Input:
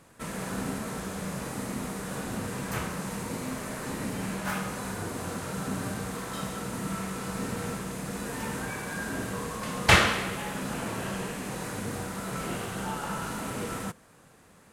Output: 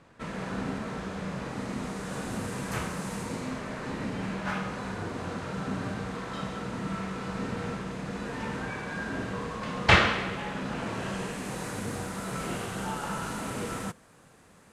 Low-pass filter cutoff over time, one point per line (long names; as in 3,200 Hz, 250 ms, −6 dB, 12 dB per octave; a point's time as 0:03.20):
0:01.47 4,200 Hz
0:02.37 10,000 Hz
0:03.18 10,000 Hz
0:03.64 4,300 Hz
0:10.73 4,300 Hz
0:11.50 11,000 Hz